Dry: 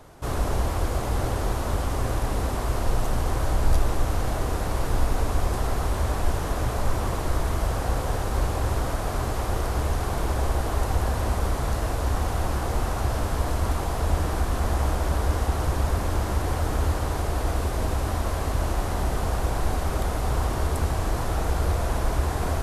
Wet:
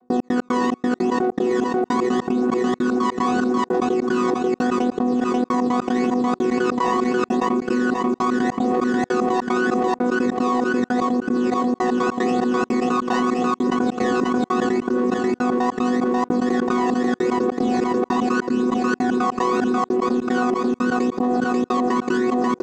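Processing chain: chord vocoder bare fifth, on B3; low shelf 450 Hz +6 dB; limiter -22.5 dBFS, peak gain reduction 7.5 dB; phaser 0.8 Hz, delay 1.1 ms, feedback 73%; in parallel at -10.5 dB: soft clip -36 dBFS, distortion -3 dB; on the sum: chorus 0.19 Hz, delay 20 ms, depth 3.6 ms; step gate ".x.x.xx.." 150 bpm -60 dB; on a send: feedback echo 0.538 s, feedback 30%, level -17 dB; on the sum: fast leveller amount 100%

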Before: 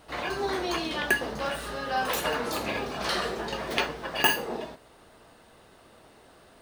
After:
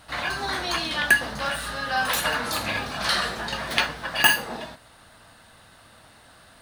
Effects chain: fifteen-band EQ 100 Hz +5 dB, 400 Hz -11 dB, 1600 Hz +5 dB, 4000 Hz +5 dB, 10000 Hz +6 dB; gain +2.5 dB

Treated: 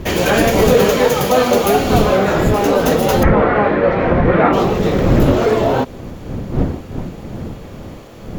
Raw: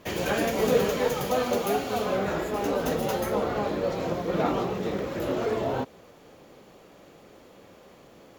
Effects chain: wind noise 230 Hz -33 dBFS; 3.23–4.53 synth low-pass 1900 Hz, resonance Q 2.2; maximiser +14 dB; gain -1 dB

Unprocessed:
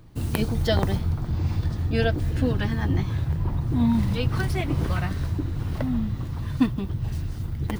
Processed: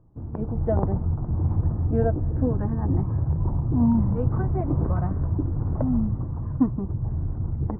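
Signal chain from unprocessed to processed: inverse Chebyshev low-pass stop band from 4600 Hz, stop band 70 dB; AGC gain up to 11.5 dB; gain -8 dB

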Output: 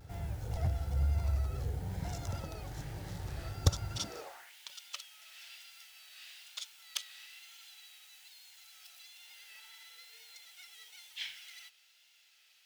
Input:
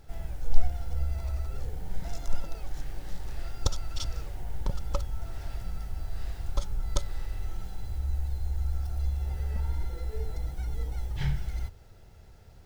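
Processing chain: one-sided fold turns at -18.5 dBFS; high-pass sweep 90 Hz -> 2800 Hz, 3.9–4.53; vibrato 1.1 Hz 56 cents

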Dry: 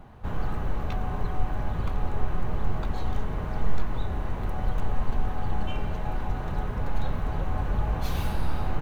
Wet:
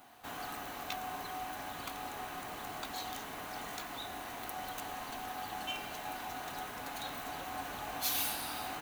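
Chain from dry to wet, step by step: differentiator; small resonant body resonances 280/710 Hz, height 12 dB, ringing for 60 ms; gain +11 dB

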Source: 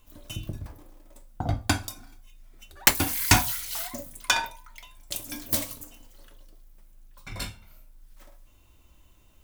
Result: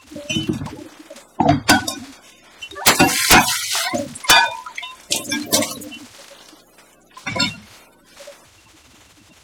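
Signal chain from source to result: bin magnitudes rounded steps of 30 dB; BPF 180–7200 Hz; sine folder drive 15 dB, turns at -3.5 dBFS; gain -1 dB

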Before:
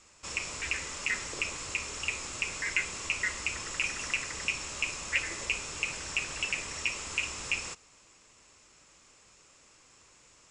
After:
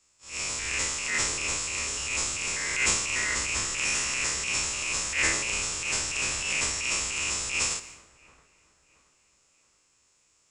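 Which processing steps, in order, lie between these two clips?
stepped spectrum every 0.1 s; high shelf 5700 Hz +8.5 dB; transient shaper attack -10 dB, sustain +9 dB; on a send: dark delay 0.675 s, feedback 53%, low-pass 2000 Hz, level -13 dB; on the sum: three-band expander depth 70%; gain +6 dB

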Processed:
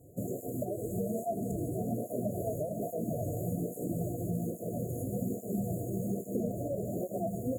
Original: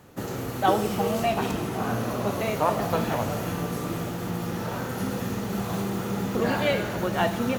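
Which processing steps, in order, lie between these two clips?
compressor 6:1, threshold -26 dBFS, peak gain reduction 10.5 dB; FFT band-reject 730–6600 Hz; tape flanging out of phase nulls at 1.2 Hz, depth 5.4 ms

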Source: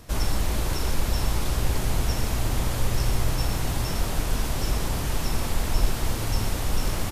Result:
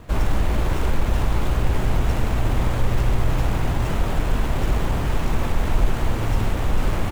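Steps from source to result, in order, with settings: median filter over 9 samples; in parallel at -1.5 dB: limiter -16.5 dBFS, peak gain reduction 7.5 dB

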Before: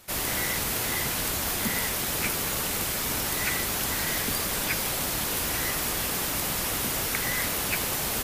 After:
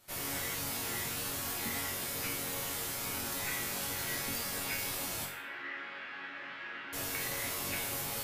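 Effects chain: 5.25–6.93 speaker cabinet 450–2700 Hz, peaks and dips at 470 Hz -9 dB, 720 Hz -9 dB, 1000 Hz -6 dB, 1600 Hz +6 dB; resonator bank F#2 major, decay 0.51 s; gain +6.5 dB

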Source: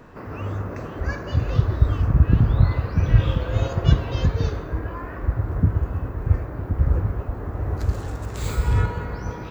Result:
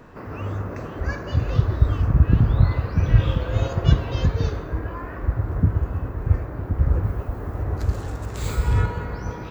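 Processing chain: 7.03–7.63 high shelf 5200 Hz +7.5 dB

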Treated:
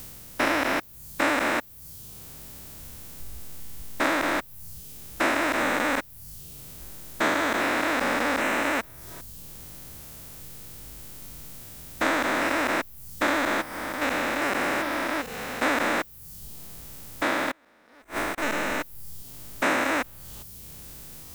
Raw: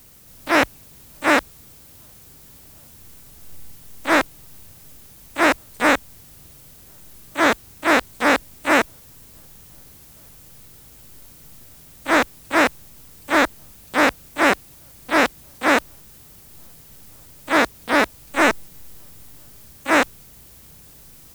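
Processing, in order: stepped spectrum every 0.4 s; in parallel at -2 dB: compressor 12:1, threshold -40 dBFS, peak gain reduction 19.5 dB; 17.51–18.38 on the sum: flipped gate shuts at -18 dBFS, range -25 dB; reverb removal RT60 0.96 s; gain +3 dB

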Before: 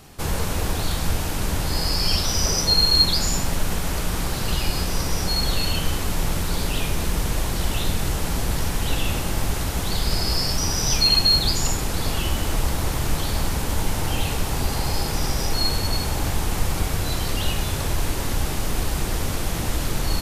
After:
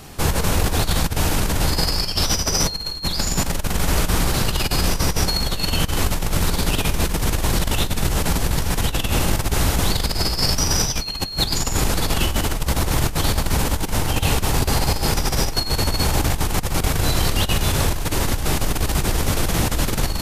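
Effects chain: negative-ratio compressor -23 dBFS, ratio -0.5; gain +4.5 dB

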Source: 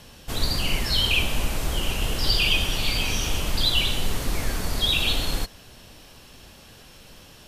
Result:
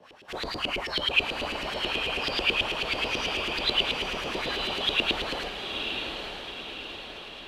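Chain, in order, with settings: frequency shift +15 Hz; chorus voices 6, 0.93 Hz, delay 30 ms, depth 3 ms; LFO band-pass saw up 9.2 Hz 350–3000 Hz; on a send: diffused feedback echo 0.922 s, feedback 52%, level -5 dB; on the sum: gain +9 dB

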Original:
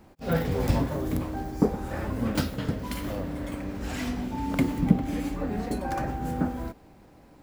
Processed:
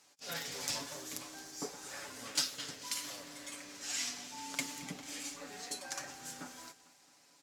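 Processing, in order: band-pass 6400 Hz, Q 1.8; comb 7 ms, depth 52%; feedback echo 0.221 s, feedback 59%, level -19 dB; gain +9 dB

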